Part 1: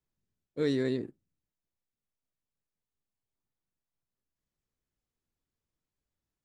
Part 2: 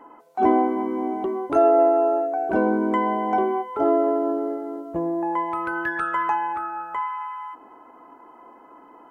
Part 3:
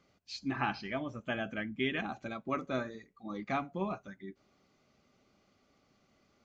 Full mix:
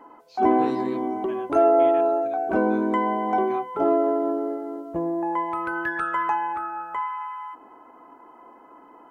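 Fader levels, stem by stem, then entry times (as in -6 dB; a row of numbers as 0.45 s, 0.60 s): -6.5 dB, -1.0 dB, -10.0 dB; 0.00 s, 0.00 s, 0.00 s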